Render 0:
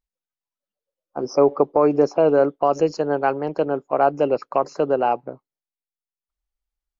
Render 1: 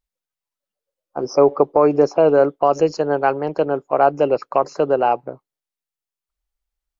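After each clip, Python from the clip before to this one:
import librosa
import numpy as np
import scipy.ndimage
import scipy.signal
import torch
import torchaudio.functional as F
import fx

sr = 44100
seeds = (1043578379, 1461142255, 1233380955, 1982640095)

y = fx.peak_eq(x, sr, hz=240.0, db=-3.5, octaves=0.7)
y = y * librosa.db_to_amplitude(3.0)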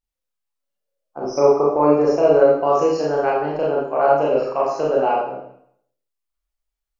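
y = fx.rev_schroeder(x, sr, rt60_s=0.67, comb_ms=27, drr_db=-5.5)
y = y * librosa.db_to_amplitude(-7.0)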